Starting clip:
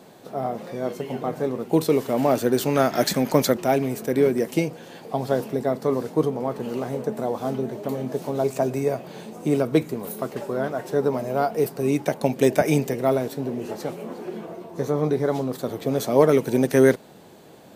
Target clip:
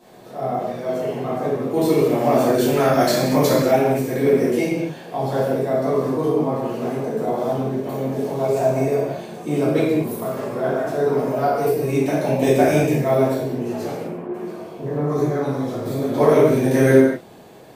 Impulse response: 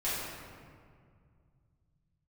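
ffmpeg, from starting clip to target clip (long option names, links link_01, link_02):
-filter_complex "[0:a]asettb=1/sr,asplit=3[link_01][link_02][link_03];[link_01]atrim=end=14.024[link_04];[link_02]atrim=start=14.02:end=16.18,asetpts=PTS-STARTPTS,afade=type=in:duration=0.004:curve=qsin,afade=type=out:start_time=2.156:duration=0.004:curve=qsin,acrossover=split=530|2400[link_05][link_06][link_07];[link_06]adelay=70[link_08];[link_07]adelay=320[link_09];[link_05][link_08][link_09]amix=inputs=3:normalize=0,atrim=end_sample=95256[link_10];[link_03]atrim=start=16.176[link_11];[link_04][link_10]acrossfade=duration=0.004:curve1=hsin:curve2=qsin[link_12];[link_12][link_11]acrossfade=duration=0.004:curve1=qsin:curve2=hsin[link_13];[1:a]atrim=start_sample=2205,afade=type=out:start_time=0.31:duration=0.01,atrim=end_sample=14112[link_14];[link_13][link_14]afir=irnorm=-1:irlink=0,volume=-3dB"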